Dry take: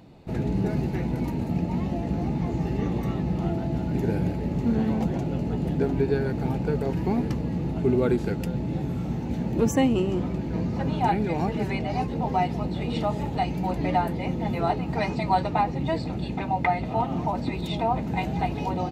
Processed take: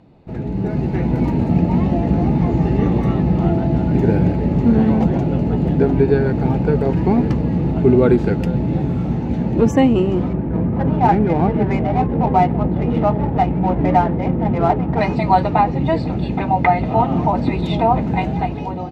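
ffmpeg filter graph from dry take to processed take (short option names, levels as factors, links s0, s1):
-filter_complex "[0:a]asettb=1/sr,asplit=3[s0][s1][s2];[s0]atrim=end=10.334[s3];[s1]atrim=start=10.33:end=15.01,asetpts=PTS-STARTPTS,afade=t=in:d=0.004:c=qsin,afade=t=out:st=4.676:d=0.004:c=qsin,lowpass=2400,adynamicsmooth=sensitivity=6.5:basefreq=1100[s4];[s2]atrim=start=15.006[s5];[s3][s4]acrossfade=d=0.004:c1=hsin:c2=qsin[s6];[s6][s5]acrossfade=d=0.004:c1=qsin:c2=hsin,aemphasis=mode=reproduction:type=75fm,dynaudnorm=f=250:g=7:m=3.55"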